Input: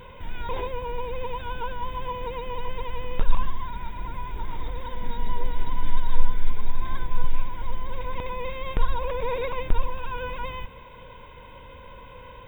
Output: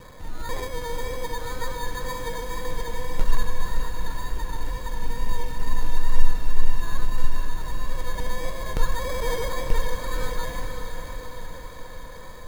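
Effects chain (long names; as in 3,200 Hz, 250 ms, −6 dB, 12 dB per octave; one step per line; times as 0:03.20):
0:04.38–0:05.61: low-pass filter 1,500 Hz 24 dB per octave
decimation without filtering 16×
tape wow and flutter 28 cents
feedback delay with all-pass diffusion 501 ms, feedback 63%, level −6.5 dB
convolution reverb RT60 2.8 s, pre-delay 6 ms, DRR 12 dB
level −1 dB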